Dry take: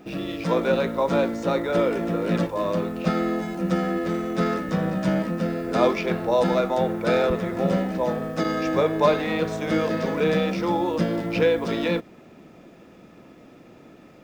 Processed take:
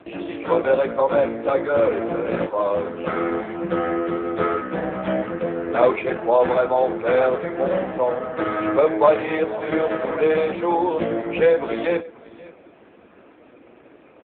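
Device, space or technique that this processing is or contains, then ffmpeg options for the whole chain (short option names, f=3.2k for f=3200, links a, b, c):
satellite phone: -af "highpass=330,lowpass=3.2k,aecho=1:1:532:0.1,volume=6dB" -ar 8000 -c:a libopencore_amrnb -b:a 5150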